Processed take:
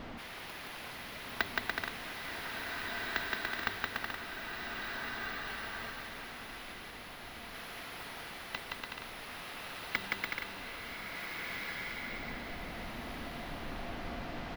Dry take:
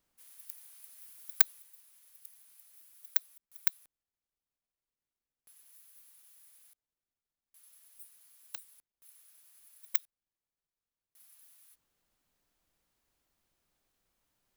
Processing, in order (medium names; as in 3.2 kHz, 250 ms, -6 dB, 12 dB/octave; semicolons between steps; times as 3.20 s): de-hum 98.17 Hz, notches 4; small resonant body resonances 240/690/2000 Hz, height 7 dB; on a send: bouncing-ball echo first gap 170 ms, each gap 0.7×, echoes 5; on the sum: power-law waveshaper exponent 0.5; distance through air 340 m; swelling reverb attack 1760 ms, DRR -0.5 dB; trim +1 dB